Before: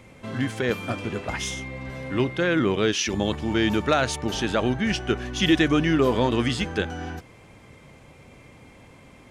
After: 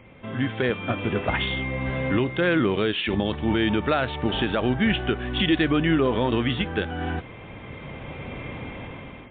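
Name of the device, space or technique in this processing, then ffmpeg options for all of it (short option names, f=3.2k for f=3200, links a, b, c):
low-bitrate web radio: -af "dynaudnorm=f=370:g=5:m=15dB,alimiter=limit=-11.5dB:level=0:latency=1:release=464" -ar 8000 -c:a libmp3lame -b:a 32k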